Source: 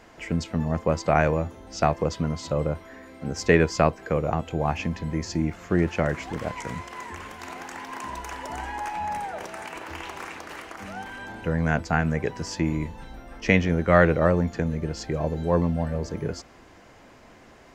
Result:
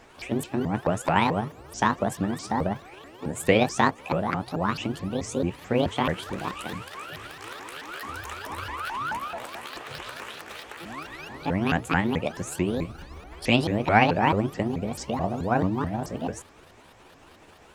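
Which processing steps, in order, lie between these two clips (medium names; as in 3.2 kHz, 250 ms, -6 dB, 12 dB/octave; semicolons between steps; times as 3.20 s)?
sawtooth pitch modulation +10.5 st, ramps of 217 ms; band-stop 2.1 kHz, Q 28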